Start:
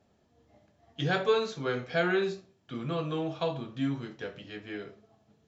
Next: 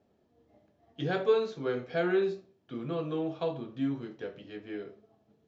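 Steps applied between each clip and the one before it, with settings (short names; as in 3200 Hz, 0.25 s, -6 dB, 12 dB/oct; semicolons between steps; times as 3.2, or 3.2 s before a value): LPF 5800 Hz 12 dB/oct; bell 370 Hz +8 dB 1.8 oct; gain -6.5 dB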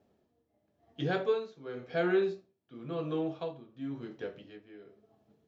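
tremolo 0.95 Hz, depth 78%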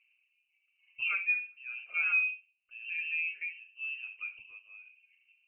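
formant sharpening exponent 1.5; air absorption 490 m; inverted band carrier 2900 Hz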